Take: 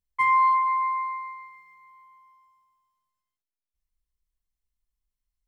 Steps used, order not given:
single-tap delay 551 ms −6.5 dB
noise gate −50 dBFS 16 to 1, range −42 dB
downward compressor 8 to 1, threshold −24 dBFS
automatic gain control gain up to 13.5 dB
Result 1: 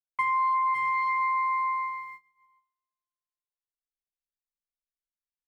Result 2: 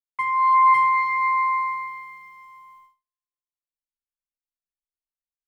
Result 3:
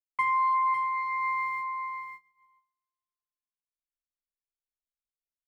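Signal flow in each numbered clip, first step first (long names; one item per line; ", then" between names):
noise gate, then single-tap delay, then automatic gain control, then downward compressor
downward compressor, then single-tap delay, then automatic gain control, then noise gate
noise gate, then automatic gain control, then downward compressor, then single-tap delay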